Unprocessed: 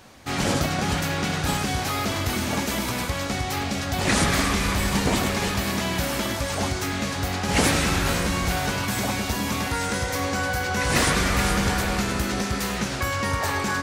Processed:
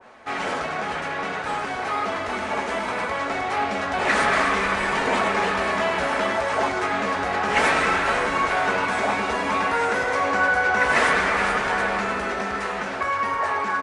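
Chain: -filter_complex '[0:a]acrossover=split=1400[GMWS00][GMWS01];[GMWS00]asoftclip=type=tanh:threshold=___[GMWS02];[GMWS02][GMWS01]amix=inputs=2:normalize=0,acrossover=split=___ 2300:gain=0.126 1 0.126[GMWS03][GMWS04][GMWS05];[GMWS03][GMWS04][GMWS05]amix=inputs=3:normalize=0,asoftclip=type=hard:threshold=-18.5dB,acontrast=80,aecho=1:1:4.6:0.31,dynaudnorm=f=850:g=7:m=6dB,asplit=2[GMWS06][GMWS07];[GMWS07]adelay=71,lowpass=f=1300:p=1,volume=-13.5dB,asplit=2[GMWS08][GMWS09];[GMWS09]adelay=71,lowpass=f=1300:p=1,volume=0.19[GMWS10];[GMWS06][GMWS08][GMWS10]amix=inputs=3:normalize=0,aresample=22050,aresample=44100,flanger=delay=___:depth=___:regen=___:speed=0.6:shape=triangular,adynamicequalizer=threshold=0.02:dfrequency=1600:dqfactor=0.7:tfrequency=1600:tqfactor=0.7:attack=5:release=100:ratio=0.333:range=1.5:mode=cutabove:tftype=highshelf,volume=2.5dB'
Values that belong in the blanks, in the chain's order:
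-26.5dB, 370, 7.3, 6.7, -50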